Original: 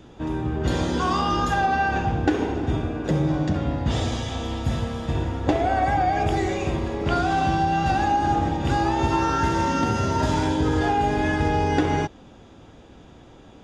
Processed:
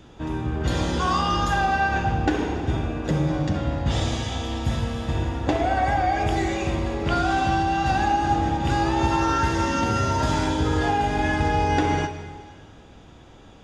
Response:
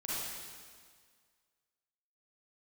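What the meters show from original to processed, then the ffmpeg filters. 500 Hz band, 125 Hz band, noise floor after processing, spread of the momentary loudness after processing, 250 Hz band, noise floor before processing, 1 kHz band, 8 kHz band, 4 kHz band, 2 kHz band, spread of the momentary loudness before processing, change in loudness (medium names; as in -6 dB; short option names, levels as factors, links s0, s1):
-1.0 dB, 0.0 dB, -47 dBFS, 6 LU, -1.0 dB, -48 dBFS, 0.0 dB, +2.0 dB, +2.0 dB, +1.5 dB, 6 LU, 0.0 dB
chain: -filter_complex "[0:a]equalizer=f=340:t=o:w=2.6:g=-4,asplit=2[s0][s1];[1:a]atrim=start_sample=2205[s2];[s1][s2]afir=irnorm=-1:irlink=0,volume=0.316[s3];[s0][s3]amix=inputs=2:normalize=0"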